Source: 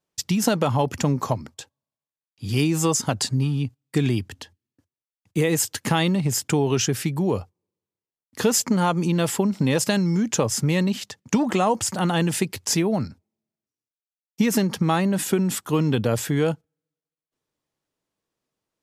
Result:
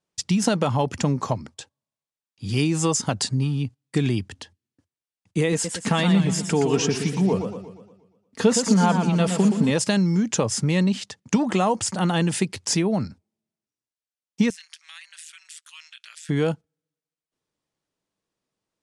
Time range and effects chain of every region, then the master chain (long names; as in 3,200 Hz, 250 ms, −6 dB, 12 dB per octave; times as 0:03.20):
0:05.52–0:09.71: high-shelf EQ 4,000 Hz −4.5 dB + comb filter 4.4 ms, depth 44% + feedback echo with a swinging delay time 118 ms, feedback 50%, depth 149 cents, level −7 dB
0:14.50–0:16.29: inverse Chebyshev high-pass filter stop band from 320 Hz, stop band 80 dB + downward compressor 5 to 1, threshold −34 dBFS + amplitude modulation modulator 160 Hz, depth 80%
whole clip: elliptic low-pass filter 9,800 Hz, stop band 60 dB; parametric band 190 Hz +3.5 dB 0.26 octaves